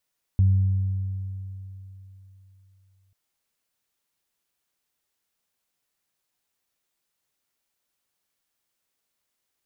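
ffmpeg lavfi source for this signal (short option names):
-f lavfi -i "aevalsrc='0.2*pow(10,-3*t/3.4)*sin(2*PI*96*t)+0.0266*pow(10,-3*t/2.67)*sin(2*PI*192*t)':d=2.74:s=44100"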